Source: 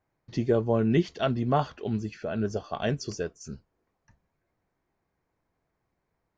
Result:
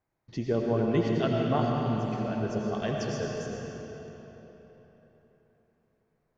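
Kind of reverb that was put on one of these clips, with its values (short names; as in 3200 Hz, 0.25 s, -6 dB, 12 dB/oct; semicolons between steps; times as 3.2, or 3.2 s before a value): digital reverb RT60 3.9 s, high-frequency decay 0.75×, pre-delay 55 ms, DRR -1.5 dB; gain -4.5 dB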